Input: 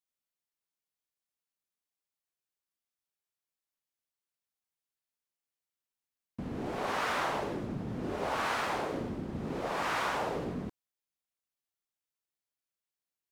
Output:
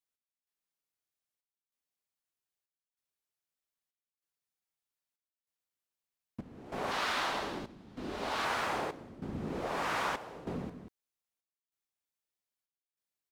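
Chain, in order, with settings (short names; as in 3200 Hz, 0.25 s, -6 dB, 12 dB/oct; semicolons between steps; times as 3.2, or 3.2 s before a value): 6.91–8.45 graphic EQ 125/500/4000 Hz -8/-4/+7 dB; echo 0.188 s -9.5 dB; step gate "x..xxxxx" 96 bpm -12 dB; gain -1.5 dB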